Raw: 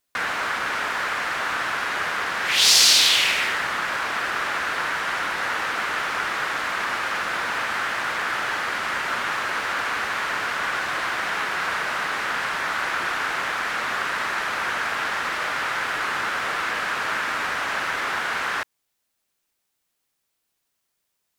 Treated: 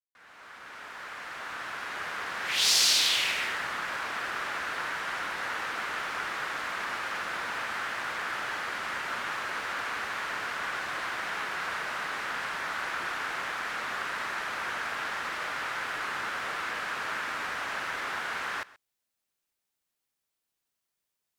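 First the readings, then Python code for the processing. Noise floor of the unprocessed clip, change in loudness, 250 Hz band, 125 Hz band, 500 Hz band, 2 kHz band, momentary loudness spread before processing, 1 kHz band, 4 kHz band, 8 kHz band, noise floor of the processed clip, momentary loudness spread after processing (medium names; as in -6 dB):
-76 dBFS, -8.0 dB, -8.5 dB, -8.5 dB, -8.5 dB, -8.5 dB, 5 LU, -8.5 dB, -8.0 dB, -8.0 dB, -84 dBFS, 7 LU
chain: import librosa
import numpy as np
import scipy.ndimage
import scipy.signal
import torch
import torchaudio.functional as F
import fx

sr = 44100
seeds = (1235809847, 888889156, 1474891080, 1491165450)

p1 = fx.fade_in_head(x, sr, length_s=2.61)
p2 = p1 + fx.echo_single(p1, sr, ms=130, db=-20.5, dry=0)
y = p2 * 10.0 ** (-8.0 / 20.0)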